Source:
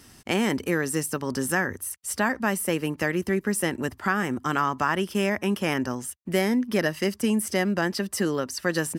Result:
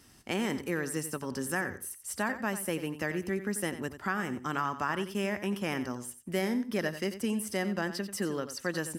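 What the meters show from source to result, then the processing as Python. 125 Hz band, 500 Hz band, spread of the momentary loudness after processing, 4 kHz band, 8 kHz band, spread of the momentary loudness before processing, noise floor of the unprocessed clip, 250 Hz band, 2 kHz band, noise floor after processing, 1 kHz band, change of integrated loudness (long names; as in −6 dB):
−7.0 dB, −7.0 dB, 4 LU, −7.0 dB, −7.0 dB, 4 LU, −52 dBFS, −7.5 dB, −7.0 dB, −53 dBFS, −7.0 dB, −7.0 dB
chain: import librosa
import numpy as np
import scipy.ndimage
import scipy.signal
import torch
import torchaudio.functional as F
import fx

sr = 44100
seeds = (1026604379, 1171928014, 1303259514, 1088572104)

y = fx.echo_feedback(x, sr, ms=90, feedback_pct=18, wet_db=-12)
y = F.gain(torch.from_numpy(y), -7.5).numpy()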